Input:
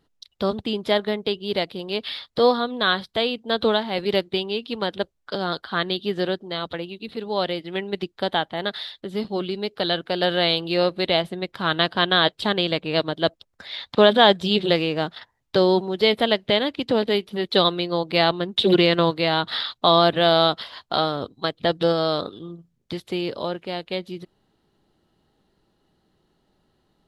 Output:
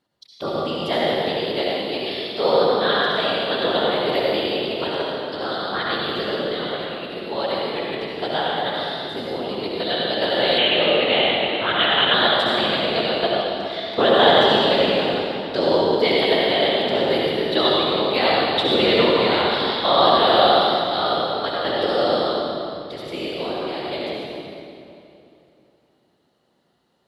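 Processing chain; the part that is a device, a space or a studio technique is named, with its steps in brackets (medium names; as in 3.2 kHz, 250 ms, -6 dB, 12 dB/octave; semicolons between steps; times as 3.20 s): whispering ghost (whisper effect; high-pass 320 Hz 6 dB/octave; reverberation RT60 2.8 s, pre-delay 58 ms, DRR -5 dB); 10.58–12.14 s: resonant high shelf 4.3 kHz -13.5 dB, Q 3; trim -3 dB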